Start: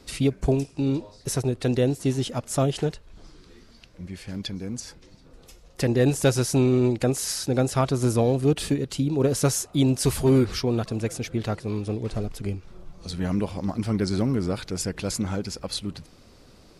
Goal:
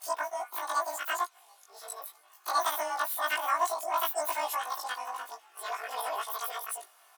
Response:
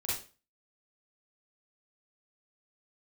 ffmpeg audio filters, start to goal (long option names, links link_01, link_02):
-af "afftfilt=real='re':imag='-im':win_size=4096:overlap=0.75,highpass=frequency=320:width=0.5412,highpass=frequency=320:width=1.3066,aecho=1:1:6.5:0.52,asetrate=103194,aresample=44100"